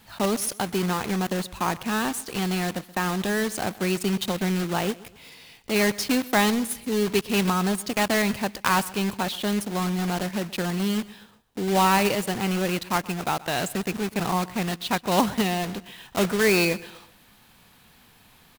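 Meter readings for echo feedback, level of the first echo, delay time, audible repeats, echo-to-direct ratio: 39%, −20.0 dB, 127 ms, 2, −19.5 dB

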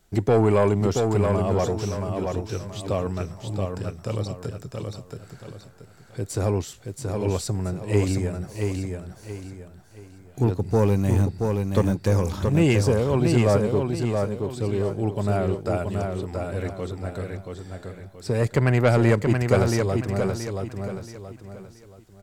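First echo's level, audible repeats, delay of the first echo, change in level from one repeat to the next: −4.5 dB, 4, 677 ms, −9.5 dB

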